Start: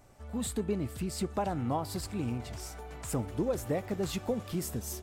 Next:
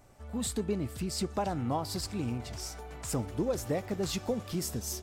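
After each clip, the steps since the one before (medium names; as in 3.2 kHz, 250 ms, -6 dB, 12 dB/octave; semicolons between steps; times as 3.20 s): dynamic bell 5.3 kHz, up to +7 dB, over -57 dBFS, Q 1.5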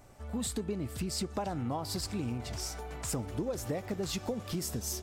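compression 4:1, threshold -34 dBFS, peak gain reduction 7.5 dB; trim +2.5 dB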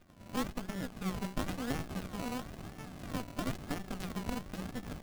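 rippled Chebyshev high-pass 180 Hz, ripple 9 dB; decimation with a swept rate 35×, swing 60% 0.99 Hz; sliding maximum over 65 samples; trim +6 dB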